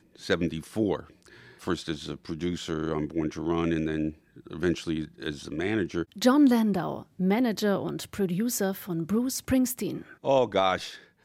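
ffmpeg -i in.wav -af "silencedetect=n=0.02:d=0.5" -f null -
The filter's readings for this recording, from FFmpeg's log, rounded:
silence_start: 1.00
silence_end: 1.64 | silence_duration: 0.64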